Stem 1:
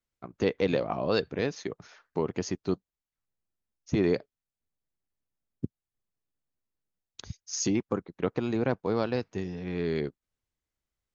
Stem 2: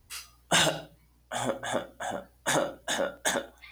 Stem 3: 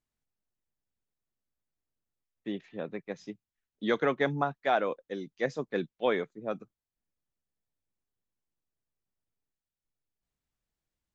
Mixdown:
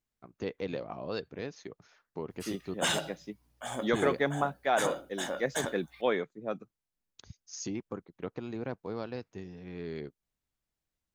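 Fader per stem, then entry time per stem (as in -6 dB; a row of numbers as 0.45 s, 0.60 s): -9.5 dB, -6.5 dB, -1.0 dB; 0.00 s, 2.30 s, 0.00 s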